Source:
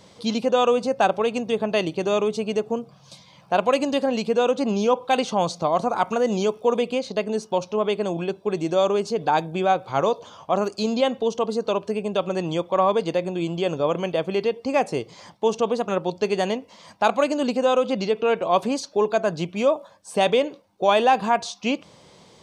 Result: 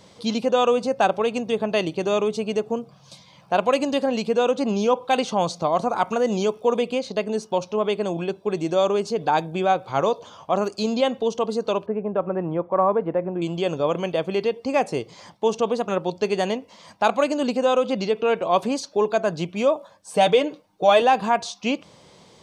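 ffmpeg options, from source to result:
-filter_complex "[0:a]asettb=1/sr,asplit=3[s0][s1][s2];[s0]atrim=end=11.864[s3];[s1]atrim=start=11.86:end=13.42,asetpts=PTS-STARTPTS,afade=t=in:d=0.004:c=qsin,afade=t=out:st=1.556:d=0.004:c=qsin,lowpass=f=1700:w=0.5412,lowpass=f=1700:w=1.3066[s4];[s2]atrim=start=13.416[s5];[s3][s4]acrossfade=d=0.004:c1=hsin:c2=qsin[s6];[s6][s5]acrossfade=d=0.004:c1=qsin:c2=hsin,asettb=1/sr,asplit=3[s7][s8][s9];[s7]atrim=end=20.134[s10];[s8]atrim=start=20.13:end=21.02,asetpts=PTS-STARTPTS,afade=t=in:d=0.004:c=qsin,afade=t=out:st=0.886:d=0.004:c=qsin,aecho=1:1:6.5:0.62,atrim=end_sample=39249[s11];[s9]atrim=start=21.016[s12];[s10][s11]acrossfade=d=0.004:c1=hsin:c2=qsin[s13];[s13][s12]acrossfade=d=0.004:c1=qsin:c2=hsin"

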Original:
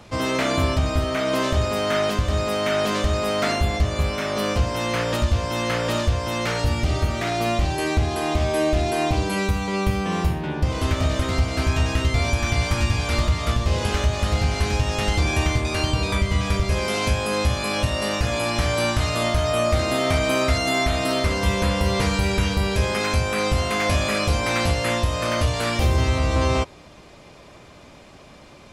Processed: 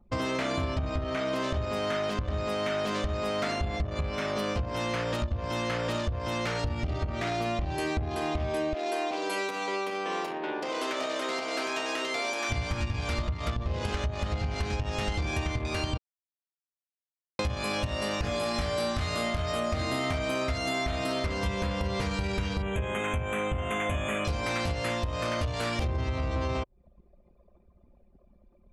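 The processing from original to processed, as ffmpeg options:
-filter_complex "[0:a]asplit=3[s0][s1][s2];[s0]afade=t=out:st=8.73:d=0.02[s3];[s1]highpass=f=330:w=0.5412,highpass=f=330:w=1.3066,afade=t=in:st=8.73:d=0.02,afade=t=out:st=12.49:d=0.02[s4];[s2]afade=t=in:st=12.49:d=0.02[s5];[s3][s4][s5]amix=inputs=3:normalize=0,asettb=1/sr,asplit=3[s6][s7][s8];[s6]atrim=end=18.224[s9];[s7]atrim=start=18.22:end=20.13,asetpts=PTS-STARTPTS,afade=t=in:d=0.004:c=qsin,afade=t=out:st=1.906:d=0.004:c=qsin,asplit=2[s10][s11];[s11]adelay=22,volume=0.708[s12];[s10][s12]amix=inputs=2:normalize=0,atrim=end_sample=84231[s13];[s8]atrim=start=20.126[s14];[s9][s13]acrossfade=d=0.004:c1=hsin:c2=qsin[s15];[s15][s14]acrossfade=d=0.004:c1=qsin:c2=hsin,asettb=1/sr,asplit=3[s16][s17][s18];[s16]atrim=end=22.624[s19];[s17]atrim=start=22.62:end=24.25,asetpts=PTS-STARTPTS,afade=t=in:d=0.004:c=qsin,afade=t=out:st=1.626:d=0.004:c=qsin,asuperstop=centerf=4800:order=12:qfactor=1.7[s20];[s18]atrim=start=24.246[s21];[s19][s20]acrossfade=d=0.004:c1=hsin:c2=qsin[s22];[s22][s21]acrossfade=d=0.004:c1=qsin:c2=hsin,asplit=3[s23][s24][s25];[s23]atrim=end=15.98,asetpts=PTS-STARTPTS,afade=t=out:st=15.976:d=0.004:c=hsin[s26];[s24]atrim=start=15.98:end=17.39,asetpts=PTS-STARTPTS,volume=0[s27];[s25]atrim=start=17.39,asetpts=PTS-STARTPTS,afade=t=in:d=0.004:c=hsin[s28];[s26][s27][s28]concat=n=3:v=0:a=1,acompressor=threshold=0.0398:ratio=4,anlmdn=3.98,highshelf=f=11000:g=-4"

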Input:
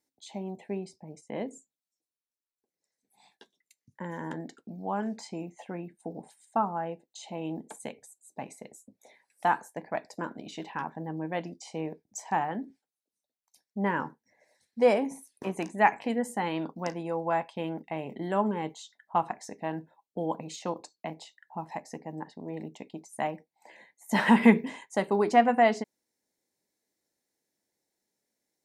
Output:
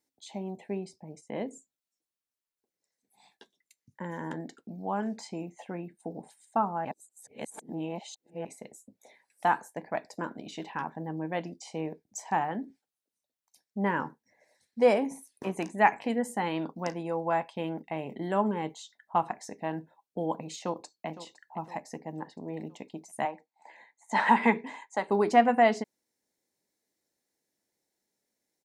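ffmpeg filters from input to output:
-filter_complex "[0:a]asplit=2[s0][s1];[s1]afade=t=in:st=20.62:d=0.01,afade=t=out:st=21.07:d=0.01,aecho=0:1:510|1020|1530|2040|2550:0.188365|0.103601|0.0569804|0.0313392|0.0172366[s2];[s0][s2]amix=inputs=2:normalize=0,asettb=1/sr,asplit=3[s3][s4][s5];[s3]atrim=end=23.254[s6];[s4]atrim=start=23.25:end=25.1,asetpts=PTS-STARTPTS,afade=t=in:d=0.004:c=qsin,afade=t=out:st=1.846:d=0.004:c=qsin,highpass=340,equalizer=f=370:t=q:w=4:g=-6,equalizer=f=550:t=q:w=4:g=-5,equalizer=f=890:t=q:w=4:g=6,equalizer=f=3000:t=q:w=4:g=-6,equalizer=f=5400:t=q:w=4:g=-9,lowpass=f=7400:w=0.5412,lowpass=f=7400:w=1.3066[s7];[s5]atrim=start=25.096[s8];[s6][s7]acrossfade=d=0.004:c1=hsin:c2=qsin[s9];[s9][s8]acrossfade=d=0.004:c1=qsin:c2=hsin,asplit=3[s10][s11][s12];[s10]atrim=end=6.852[s13];[s11]atrim=start=6.848:end=8.452,asetpts=PTS-STARTPTS,areverse[s14];[s12]atrim=start=8.448[s15];[s13][s14]acrossfade=d=0.004:c1=hsin:c2=hsin[s16];[s16][s15]acrossfade=d=0.004:c1=hsin:c2=hsin"

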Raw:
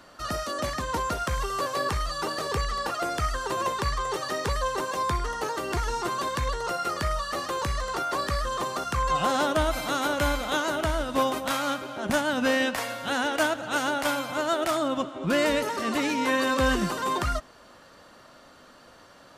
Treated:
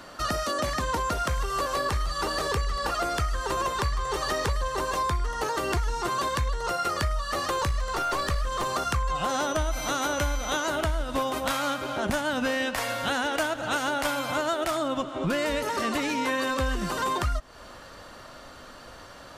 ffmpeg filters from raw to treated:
-filter_complex "[0:a]asettb=1/sr,asplit=3[s0][s1][s2];[s0]atrim=end=1.084[s3];[s1]atrim=start=1.08:end=5.07,asetpts=PTS-STARTPTS,afade=t=in:d=0.004:c=qsin,afade=t=out:st=3.986:d=0.004:c=qsin,aecho=1:1:151|302|453|604|755|906:0.178|0.103|0.0598|0.0347|0.0201|0.0117,atrim=end_sample=175959[s4];[s2]atrim=start=5.066[s5];[s3][s4]acrossfade=d=0.004:c1=hsin:c2=qsin[s6];[s6][s5]acrossfade=d=0.004:c1=qsin:c2=hsin,asettb=1/sr,asplit=3[s7][s8][s9];[s7]atrim=end=7.684[s10];[s8]atrim=start=7.68:end=8.7,asetpts=PTS-STARTPTS,afade=t=in:d=0.004:c=qsin,afade=t=out:st=1.016:d=0.004:c=qsin,aeval=exprs='clip(val(0),-1,0.0473)':c=same[s11];[s9]atrim=start=8.696[s12];[s10][s11]acrossfade=d=0.004:c1=hsin:c2=qsin[s13];[s13][s12]acrossfade=d=0.004:c1=qsin:c2=hsin,asettb=1/sr,asplit=3[s14][s15][s16];[s14]atrim=end=9.294[s17];[s15]atrim=start=9.29:end=10.67,asetpts=PTS-STARTPTS,afade=t=in:d=0.004:c=qsin,afade=t=out:st=1.376:d=0.004:c=qsin,aeval=exprs='val(0)+0.0141*sin(2*PI*6000*n/s)':c=same[s18];[s16]atrim=start=10.666[s19];[s17][s18]acrossfade=d=0.004:c1=hsin:c2=qsin[s20];[s20][s19]acrossfade=d=0.004:c1=qsin:c2=hsin,asubboost=boost=2.5:cutoff=100,acompressor=threshold=0.0282:ratio=6,volume=2.11"

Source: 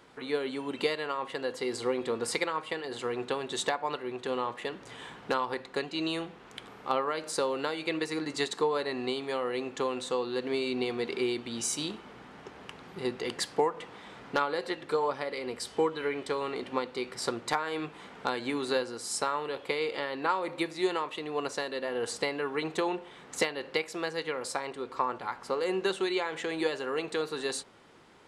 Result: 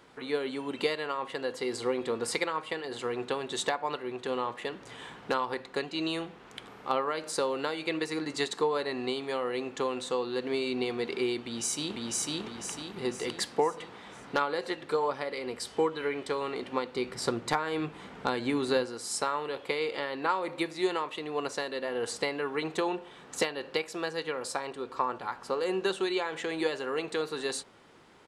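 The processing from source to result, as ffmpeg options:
-filter_complex "[0:a]asplit=2[s0][s1];[s1]afade=t=in:st=11.4:d=0.01,afade=t=out:st=12.32:d=0.01,aecho=0:1:500|1000|1500|2000|2500|3000:1|0.45|0.2025|0.091125|0.0410062|0.0184528[s2];[s0][s2]amix=inputs=2:normalize=0,asettb=1/sr,asplit=3[s3][s4][s5];[s3]atrim=end=16.944[s6];[s4]atrim=start=16.94:end=18.86,asetpts=PTS-STARTPTS,afade=t=in:d=0.004:c=qsin,afade=t=out:st=1.916:d=0.004:c=qsin,lowshelf=f=270:g=8[s7];[s5]atrim=start=18.856[s8];[s6][s7]acrossfade=d=0.004:c1=hsin:c2=qsin[s9];[s9][s8]acrossfade=d=0.004:c1=qsin:c2=hsin,asettb=1/sr,asplit=3[s10][s11][s12];[s10]atrim=end=22.794[s13];[s11]atrim=start=22.79:end=26.38,asetpts=PTS-STARTPTS,afade=t=in:d=0.004:c=qsin,afade=t=out:st=3.586:d=0.004:c=qsin,bandreject=f=2100:w=12[s14];[s12]atrim=start=26.376[s15];[s13][s14]acrossfade=d=0.004:c1=hsin:c2=qsin[s16];[s16][s15]acrossfade=d=0.004:c1=qsin:c2=hsin"

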